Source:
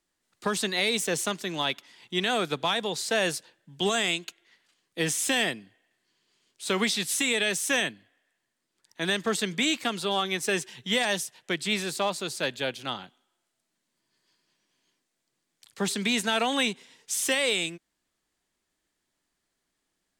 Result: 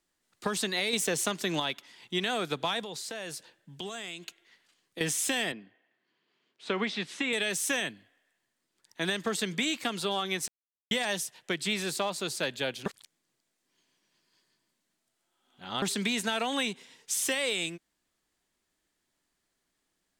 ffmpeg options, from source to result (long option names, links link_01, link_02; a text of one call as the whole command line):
ffmpeg -i in.wav -filter_complex "[0:a]asettb=1/sr,asplit=3[link_01][link_02][link_03];[link_01]atrim=end=0.934[link_04];[link_02]atrim=start=0.93:end=1.6,asetpts=PTS-STARTPTS,afade=type=in:duration=0.004:curve=qsin,afade=type=out:start_time=0.666:duration=0.004:curve=qsin,acontrast=57[link_05];[link_03]atrim=start=1.596[link_06];[link_04][link_05]acrossfade=duration=0.004:curve1=hsin:curve2=qsin[link_07];[link_07][link_06]acrossfade=duration=0.004:curve1=qsin:curve2=hsin,asettb=1/sr,asplit=3[link_08][link_09][link_10];[link_08]atrim=end=2.804[link_11];[link_09]atrim=start=2.8:end=5.01,asetpts=PTS-STARTPTS,afade=type=in:duration=0.004:curve=qsin,afade=type=out:start_time=2.206:duration=0.004:curve=qsin,acompressor=threshold=-35dB:ratio=8:attack=3.2:release=140:knee=1:detection=peak[link_12];[link_10]atrim=start=5.006[link_13];[link_11][link_12]acrossfade=duration=0.004:curve1=hsin:curve2=qsin[link_14];[link_14][link_13]acrossfade=duration=0.004:curve1=qsin:curve2=hsin,asettb=1/sr,asplit=3[link_15][link_16][link_17];[link_15]atrim=end=5.524[link_18];[link_16]atrim=start=5.52:end=7.33,asetpts=PTS-STARTPTS,afade=type=in:duration=0.004:curve=qsin,afade=type=out:start_time=1.806:duration=0.004:curve=qsin,highpass=170,lowpass=2700[link_19];[link_17]atrim=start=7.326[link_20];[link_18][link_19]acrossfade=duration=0.004:curve1=hsin:curve2=qsin[link_21];[link_21][link_20]acrossfade=duration=0.004:curve1=qsin:curve2=hsin,asplit=5[link_22][link_23][link_24][link_25][link_26];[link_22]atrim=end=10.48,asetpts=PTS-STARTPTS,afade=type=out:start_time=10.476:duration=0.004:curve=hsin[link_27];[link_23]atrim=start=10.48:end=10.91,asetpts=PTS-STARTPTS,volume=0[link_28];[link_24]atrim=start=10.91:end=12.862,asetpts=PTS-STARTPTS,afade=type=in:duration=0.004:curve=hsin[link_29];[link_25]atrim=start=12.858:end=15.822,asetpts=PTS-STARTPTS,areverse[link_30];[link_26]atrim=start=15.818[link_31];[link_27][link_28][link_29]concat=n=3:v=0:a=1[link_32];[link_32][link_30]acrossfade=duration=0.004:curve1=hsin:curve2=hsin[link_33];[link_33][link_31]acrossfade=duration=0.004:curve1=hsin:curve2=hsin,equalizer=frequency=14000:width=2:gain=2,acompressor=threshold=-26dB:ratio=6" out.wav